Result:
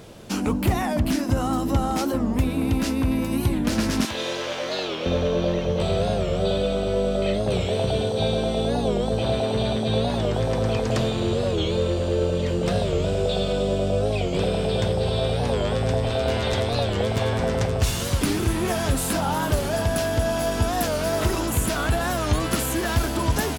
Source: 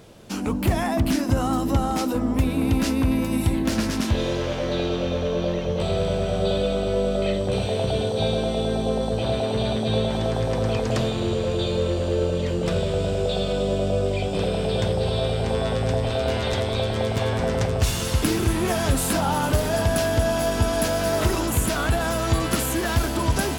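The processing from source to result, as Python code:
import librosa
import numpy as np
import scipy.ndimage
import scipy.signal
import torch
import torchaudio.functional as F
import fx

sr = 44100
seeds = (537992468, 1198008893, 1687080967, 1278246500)

y = fx.highpass(x, sr, hz=1000.0, slope=6, at=(4.05, 5.06))
y = fx.rider(y, sr, range_db=4, speed_s=0.5)
y = fx.record_warp(y, sr, rpm=45.0, depth_cents=160.0)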